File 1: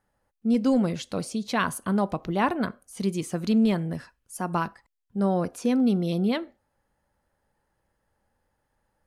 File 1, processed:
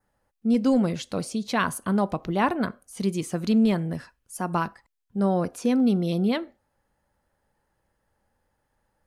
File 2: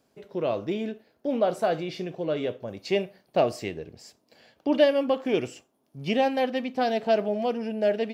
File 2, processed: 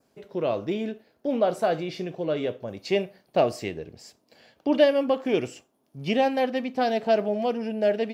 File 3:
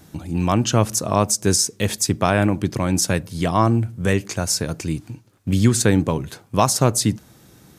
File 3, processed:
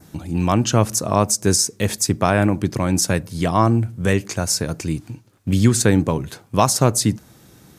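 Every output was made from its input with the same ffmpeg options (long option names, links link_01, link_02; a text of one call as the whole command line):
ffmpeg -i in.wav -af "adynamicequalizer=threshold=0.00631:dfrequency=3200:dqfactor=2.2:tfrequency=3200:tqfactor=2.2:attack=5:release=100:ratio=0.375:range=2:mode=cutabove:tftype=bell,volume=1dB" out.wav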